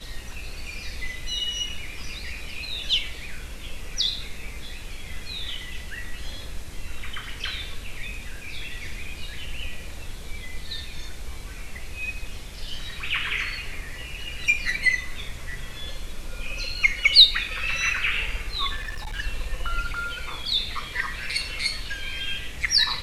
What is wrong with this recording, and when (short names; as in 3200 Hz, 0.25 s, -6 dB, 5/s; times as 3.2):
18.76–19.2 clipped -28.5 dBFS